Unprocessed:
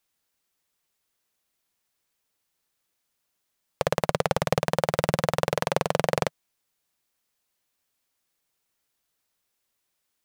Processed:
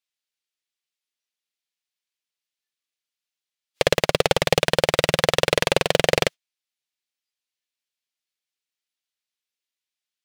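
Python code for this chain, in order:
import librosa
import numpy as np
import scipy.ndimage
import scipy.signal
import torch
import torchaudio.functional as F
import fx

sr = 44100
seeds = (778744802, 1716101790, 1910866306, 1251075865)

y = fx.weighting(x, sr, curve='D')
y = fx.noise_reduce_blind(y, sr, reduce_db=19)
y = fx.low_shelf(y, sr, hz=95.0, db=-9.5)
y = np.clip(y, -10.0 ** (-13.0 / 20.0), 10.0 ** (-13.0 / 20.0))
y = fx.upward_expand(y, sr, threshold_db=-37.0, expansion=1.5)
y = F.gain(torch.from_numpy(y), 8.5).numpy()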